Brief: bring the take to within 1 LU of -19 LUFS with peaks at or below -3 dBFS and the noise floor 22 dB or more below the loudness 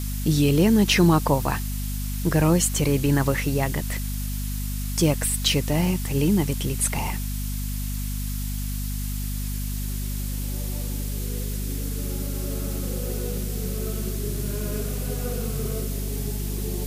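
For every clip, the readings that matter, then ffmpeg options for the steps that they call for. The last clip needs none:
hum 50 Hz; highest harmonic 250 Hz; hum level -26 dBFS; noise floor -28 dBFS; noise floor target -47 dBFS; loudness -25.0 LUFS; peak level -6.0 dBFS; loudness target -19.0 LUFS
-> -af "bandreject=f=50:t=h:w=4,bandreject=f=100:t=h:w=4,bandreject=f=150:t=h:w=4,bandreject=f=200:t=h:w=4,bandreject=f=250:t=h:w=4"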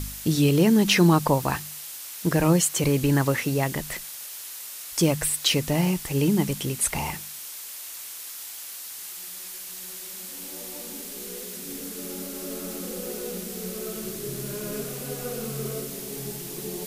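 hum not found; noise floor -39 dBFS; noise floor target -49 dBFS
-> -af "afftdn=nr=10:nf=-39"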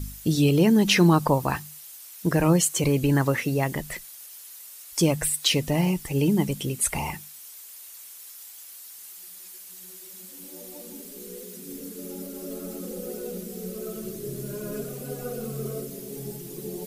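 noise floor -44 dBFS; noise floor target -47 dBFS
-> -af "afftdn=nr=6:nf=-44"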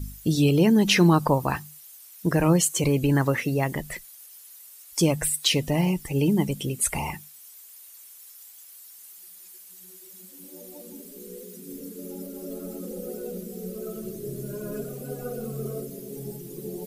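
noise floor -48 dBFS; loudness -25.0 LUFS; peak level -7.0 dBFS; loudness target -19.0 LUFS
-> -af "volume=2,alimiter=limit=0.708:level=0:latency=1"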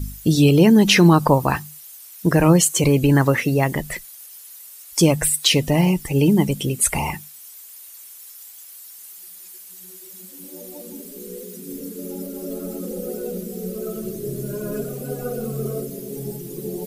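loudness -19.0 LUFS; peak level -3.0 dBFS; noise floor -42 dBFS

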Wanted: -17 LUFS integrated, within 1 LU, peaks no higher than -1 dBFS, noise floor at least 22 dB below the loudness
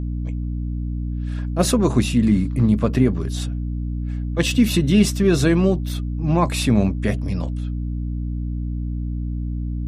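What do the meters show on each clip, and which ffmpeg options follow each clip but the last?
hum 60 Hz; highest harmonic 300 Hz; hum level -23 dBFS; loudness -21.0 LUFS; peak level -4.0 dBFS; loudness target -17.0 LUFS
-> -af "bandreject=f=60:t=h:w=4,bandreject=f=120:t=h:w=4,bandreject=f=180:t=h:w=4,bandreject=f=240:t=h:w=4,bandreject=f=300:t=h:w=4"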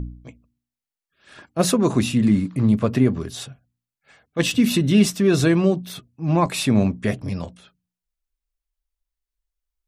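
hum not found; loudness -20.0 LUFS; peak level -5.0 dBFS; loudness target -17.0 LUFS
-> -af "volume=1.41"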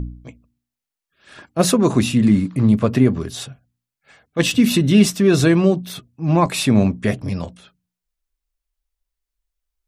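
loudness -17.0 LUFS; peak level -2.0 dBFS; noise floor -86 dBFS

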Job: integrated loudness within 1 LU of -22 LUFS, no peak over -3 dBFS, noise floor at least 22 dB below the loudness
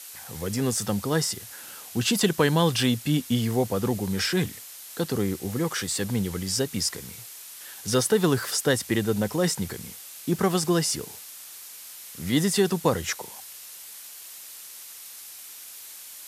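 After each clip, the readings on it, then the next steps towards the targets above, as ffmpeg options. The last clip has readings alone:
noise floor -43 dBFS; noise floor target -48 dBFS; loudness -25.5 LUFS; peak level -7.0 dBFS; loudness target -22.0 LUFS
-> -af "afftdn=nr=6:nf=-43"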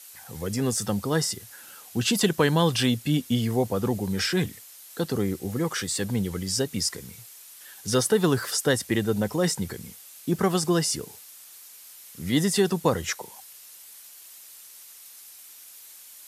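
noise floor -48 dBFS; loudness -25.5 LUFS; peak level -7.0 dBFS; loudness target -22.0 LUFS
-> -af "volume=1.5"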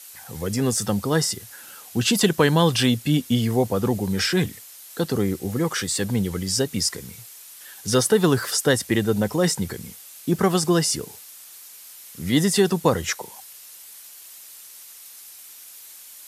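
loudness -22.0 LUFS; peak level -3.5 dBFS; noise floor -44 dBFS

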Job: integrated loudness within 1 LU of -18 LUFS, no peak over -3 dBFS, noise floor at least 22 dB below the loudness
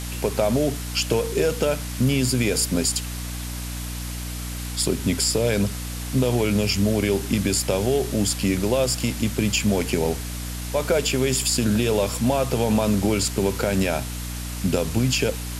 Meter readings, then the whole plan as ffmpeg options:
hum 60 Hz; highest harmonic 300 Hz; hum level -29 dBFS; noise floor -31 dBFS; noise floor target -45 dBFS; loudness -23.0 LUFS; peak level -7.0 dBFS; loudness target -18.0 LUFS
-> -af "bandreject=f=60:t=h:w=6,bandreject=f=120:t=h:w=6,bandreject=f=180:t=h:w=6,bandreject=f=240:t=h:w=6,bandreject=f=300:t=h:w=6"
-af "afftdn=nr=14:nf=-31"
-af "volume=1.78,alimiter=limit=0.708:level=0:latency=1"

